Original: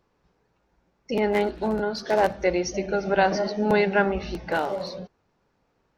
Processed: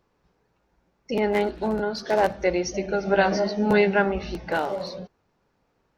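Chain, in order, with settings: 3.06–3.94 doubler 15 ms -5.5 dB

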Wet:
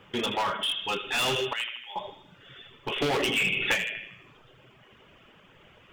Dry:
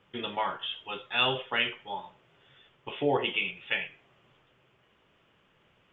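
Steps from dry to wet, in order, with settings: on a send at -8 dB: reverb RT60 0.75 s, pre-delay 84 ms; on the sum: reverb removal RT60 0.87 s; in parallel at +2.5 dB: compressor 12:1, threshold -38 dBFS, peak gain reduction 17.5 dB; 1.53–1.96 on the sum: differentiator; thin delay 79 ms, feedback 53%, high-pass 1700 Hz, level -8 dB; hard clip -28 dBFS, distortion -6 dB; 3.02–3.75 three-band squash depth 100%; gain +4 dB

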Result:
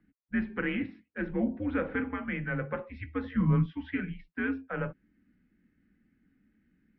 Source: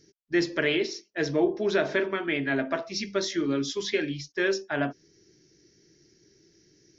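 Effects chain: 3.24–3.66 small resonant body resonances 220/670/1100 Hz, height 13 dB, ringing for 25 ms; wow and flutter 20 cents; mistuned SSB -120 Hz 150–2600 Hz; gain -5.5 dB

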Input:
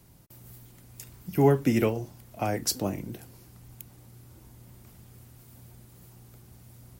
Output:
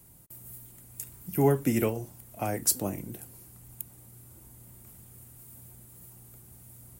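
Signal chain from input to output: resonant high shelf 6800 Hz +8.5 dB, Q 1.5; gain -2.5 dB

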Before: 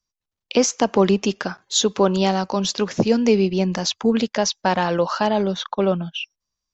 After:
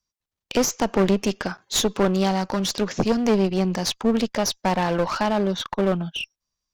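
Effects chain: one-sided clip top -25.5 dBFS

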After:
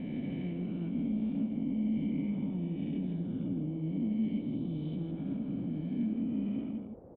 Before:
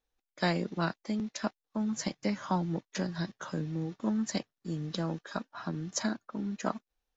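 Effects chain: spectral swells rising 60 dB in 2.29 s; low shelf 270 Hz +10.5 dB; limiter -20 dBFS, peak gain reduction 8 dB; sample leveller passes 1; vocal tract filter i; band noise 43–570 Hz -51 dBFS; on a send: echo 0.162 s -6.5 dB; on the sum: gain -1.5 dB

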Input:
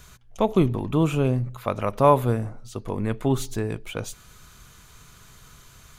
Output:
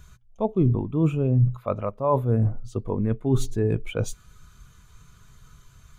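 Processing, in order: reverse; compressor 8:1, threshold -28 dBFS, peak gain reduction 17 dB; reverse; spectral expander 1.5:1; gain +7 dB

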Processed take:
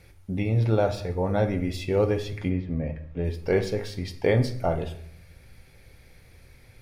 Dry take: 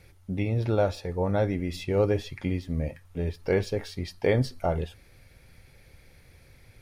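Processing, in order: 2.48–3.23 LPF 1900 Hz -> 3200 Hz 12 dB/oct; on a send: reverb RT60 0.65 s, pre-delay 16 ms, DRR 8 dB; on the sum: gain +1 dB

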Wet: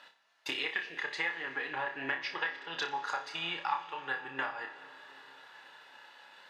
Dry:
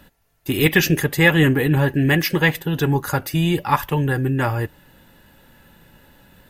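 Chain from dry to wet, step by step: treble ducked by the level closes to 2100 Hz, closed at -11.5 dBFS; Chebyshev band-pass 890–4700 Hz, order 2; transient shaper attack +5 dB, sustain -2 dB; compressor 6:1, threshold -34 dBFS, peak gain reduction 23 dB; flutter echo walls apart 5.1 m, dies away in 0.3 s; on a send at -13 dB: reverb RT60 4.9 s, pre-delay 98 ms

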